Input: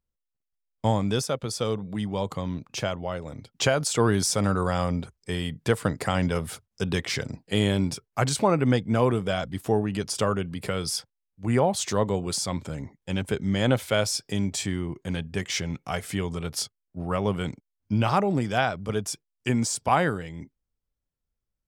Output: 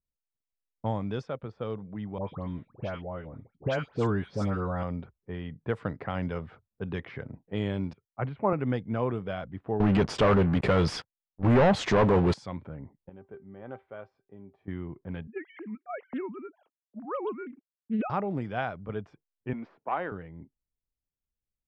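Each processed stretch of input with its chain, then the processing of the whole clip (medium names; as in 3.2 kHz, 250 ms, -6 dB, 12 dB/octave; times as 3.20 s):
2.18–4.83 s: bass shelf 350 Hz +3 dB + phase dispersion highs, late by 116 ms, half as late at 1.7 kHz
7.93–8.53 s: low-pass 2.5 kHz 24 dB/octave + peaking EQ 1.6 kHz -4 dB 0.22 oct + three bands expanded up and down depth 70%
9.80–12.34 s: low-pass 11 kHz + waveshaping leveller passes 5
13.09–14.68 s: bass shelf 240 Hz -10.5 dB + feedback comb 390 Hz, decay 0.17 s, mix 70%
15.27–18.10 s: formants replaced by sine waves + loudspeaker Doppler distortion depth 0.23 ms
19.53–20.12 s: partial rectifier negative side -3 dB + three-band isolator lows -24 dB, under 220 Hz, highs -21 dB, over 4.2 kHz
whole clip: low-pass 2.3 kHz 12 dB/octave; level-controlled noise filter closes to 610 Hz, open at -18.5 dBFS; trim -7 dB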